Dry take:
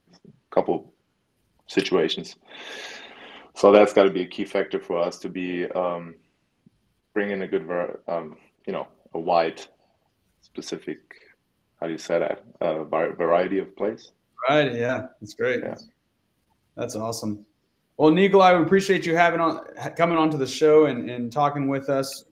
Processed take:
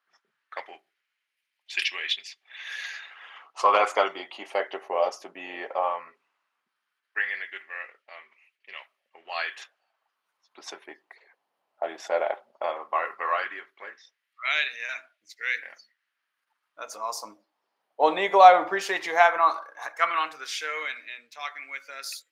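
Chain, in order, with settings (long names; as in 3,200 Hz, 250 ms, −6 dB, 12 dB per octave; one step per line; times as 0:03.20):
auto-filter high-pass sine 0.15 Hz 730–2,200 Hz
one half of a high-frequency compander decoder only
level −2.5 dB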